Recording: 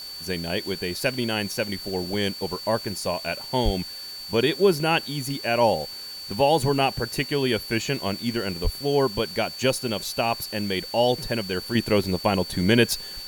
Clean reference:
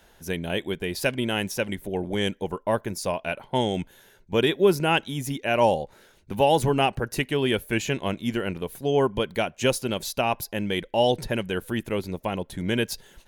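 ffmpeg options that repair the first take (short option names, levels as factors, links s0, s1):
-filter_complex "[0:a]bandreject=f=4500:w=30,asplit=3[s0][s1][s2];[s0]afade=t=out:st=3.64:d=0.02[s3];[s1]highpass=f=140:w=0.5412,highpass=f=140:w=1.3066,afade=t=in:st=3.64:d=0.02,afade=t=out:st=3.76:d=0.02[s4];[s2]afade=t=in:st=3.76:d=0.02[s5];[s3][s4][s5]amix=inputs=3:normalize=0,asplit=3[s6][s7][s8];[s6]afade=t=out:st=8.63:d=0.02[s9];[s7]highpass=f=140:w=0.5412,highpass=f=140:w=1.3066,afade=t=in:st=8.63:d=0.02,afade=t=out:st=8.75:d=0.02[s10];[s8]afade=t=in:st=8.75:d=0.02[s11];[s9][s10][s11]amix=inputs=3:normalize=0,afwtdn=0.0056,asetnsamples=n=441:p=0,asendcmd='11.75 volume volume -6.5dB',volume=1"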